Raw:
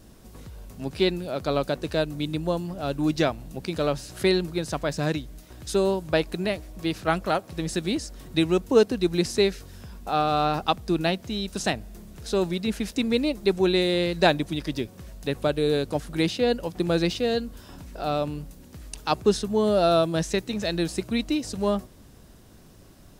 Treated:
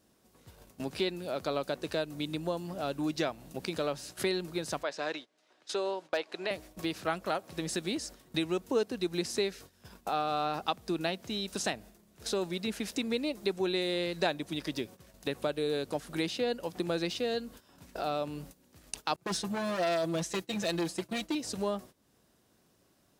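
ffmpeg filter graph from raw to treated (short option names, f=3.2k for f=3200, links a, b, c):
-filter_complex "[0:a]asettb=1/sr,asplit=3[a][b][c];[a]atrim=end=4.834[d];[b]atrim=start=4.83:end=6.51,asetpts=PTS-STARTPTS,afade=t=in:d=0.004:c=qsin,afade=t=out:st=1.676:d=0.004:c=qsin,highpass=460,lowpass=4.8k,asoftclip=type=hard:threshold=-15dB[e];[c]atrim=start=6.506[f];[d][e]acrossfade=d=0.004:c1=hsin:c2=qsin[g];[g][f]acrossfade=d=0.004:c1=qsin:c2=hsin,asettb=1/sr,asplit=3[h][i][j];[h]atrim=end=19.164[k];[i]atrim=start=19.16:end=21.35,asetpts=PTS-STARTPTS,afade=t=in:d=0.004:c=qsin,afade=t=out:st=2.186:d=0.004:c=qsin,agate=range=-33dB:threshold=-31dB:ratio=3:release=100:detection=peak,asoftclip=type=hard:threshold=-24dB,aecho=1:1:5.9:0.87,atrim=end_sample=96579[l];[j]atrim=start=21.346[m];[k][l]acrossfade=d=0.004:c1=hsin:c2=qsin[n];[n][m]acrossfade=d=0.004:c1=qsin:c2=hsin,agate=range=-18dB:threshold=-39dB:ratio=16:detection=peak,highpass=f=290:p=1,acompressor=threshold=-44dB:ratio=2,volume=5.5dB"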